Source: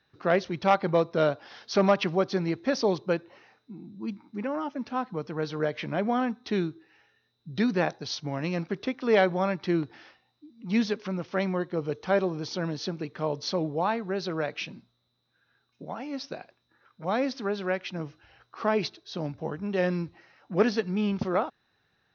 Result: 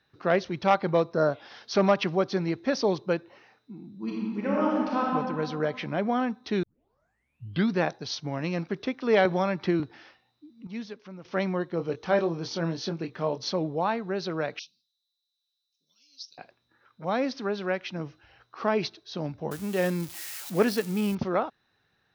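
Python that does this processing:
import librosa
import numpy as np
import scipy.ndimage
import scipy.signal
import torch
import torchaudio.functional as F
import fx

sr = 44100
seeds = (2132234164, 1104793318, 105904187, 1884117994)

y = fx.spec_repair(x, sr, seeds[0], start_s=1.16, length_s=0.28, low_hz=1900.0, high_hz=4000.0, source='both')
y = fx.reverb_throw(y, sr, start_s=3.96, length_s=1.17, rt60_s=1.9, drr_db=-4.5)
y = fx.band_squash(y, sr, depth_pct=100, at=(9.25, 9.8))
y = fx.doubler(y, sr, ms=24.0, db=-8, at=(11.77, 13.49))
y = fx.cheby2_highpass(y, sr, hz=2000.0, order=4, stop_db=40, at=(14.59, 16.38))
y = fx.crossing_spikes(y, sr, level_db=-28.0, at=(19.51, 21.15))
y = fx.edit(y, sr, fx.tape_start(start_s=6.63, length_s=1.12),
    fx.clip_gain(start_s=10.67, length_s=0.58, db=-11.5), tone=tone)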